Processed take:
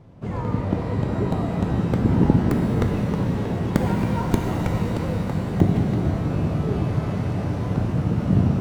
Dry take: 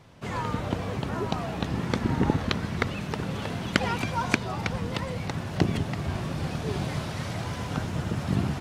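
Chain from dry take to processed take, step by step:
stylus tracing distortion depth 0.42 ms
tilt shelving filter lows +9.5 dB
reverb with rising layers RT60 3.8 s, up +12 semitones, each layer −8 dB, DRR 2 dB
level −2.5 dB

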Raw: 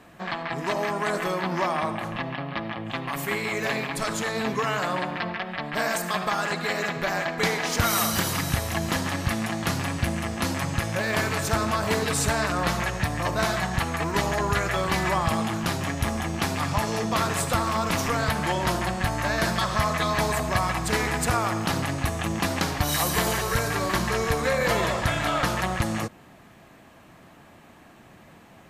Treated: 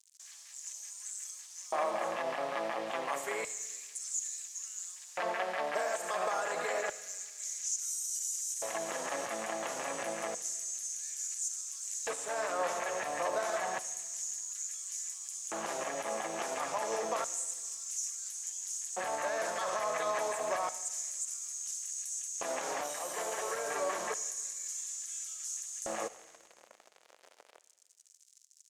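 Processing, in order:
high-pass filter 55 Hz 6 dB per octave
high shelf with overshoot 5,500 Hz +8 dB, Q 3
downward compressor, threshold −25 dBFS, peak gain reduction 12.5 dB
brickwall limiter −22.5 dBFS, peak gain reduction 11 dB
bit reduction 7 bits
auto-filter high-pass square 0.29 Hz 530–6,600 Hz
high-frequency loss of the air 64 metres
delay with a high-pass on its return 74 ms, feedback 80%, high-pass 2,100 Hz, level −16 dB
on a send at −17.5 dB: convolution reverb RT60 1.3 s, pre-delay 5 ms
on the sum: level −2.5 dB

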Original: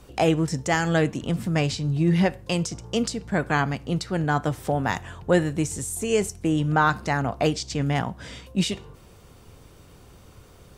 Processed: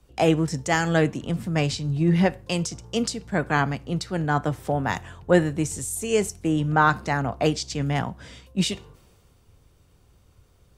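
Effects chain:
multiband upward and downward expander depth 40%

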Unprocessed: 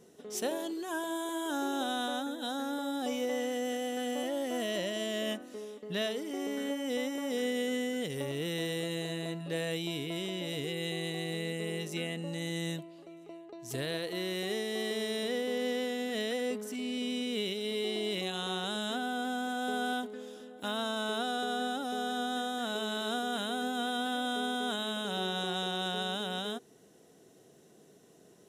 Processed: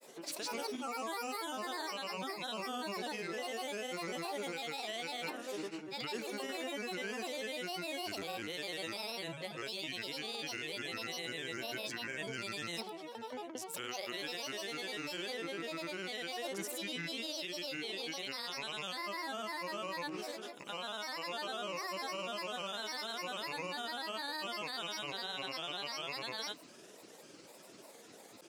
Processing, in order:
high-pass filter 1,100 Hz 6 dB per octave
high-shelf EQ 7,100 Hz −5.5 dB
brickwall limiter −33 dBFS, peak gain reduction 8.5 dB
reversed playback
downward compressor 6 to 1, threshold −49 dBFS, peak gain reduction 10 dB
reversed playback
granular cloud, pitch spread up and down by 7 semitones
level +13 dB

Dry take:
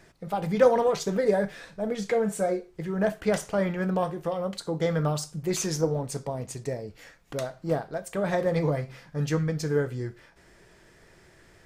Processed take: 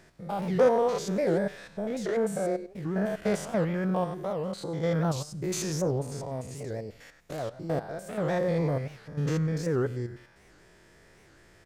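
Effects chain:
spectrum averaged block by block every 100 ms
slap from a distant wall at 29 metres, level −27 dB
wow of a warped record 78 rpm, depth 250 cents

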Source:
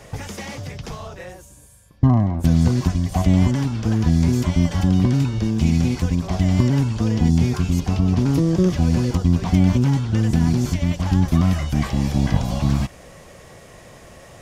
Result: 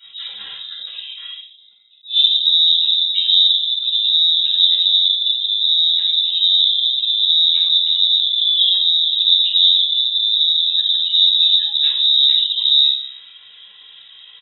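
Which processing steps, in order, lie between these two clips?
lower of the sound and its delayed copy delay 3.3 ms
gate on every frequency bin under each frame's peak −20 dB strong
parametric band 580 Hz +7 dB 1.3 octaves
double-tracking delay 43 ms −14 dB
ambience of single reflections 58 ms −18 dB, 74 ms −12 dB
convolution reverb RT60 0.45 s, pre-delay 8 ms, DRR −4.5 dB
voice inversion scrambler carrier 3,800 Hz
level that may rise only so fast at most 230 dB per second
level −10.5 dB

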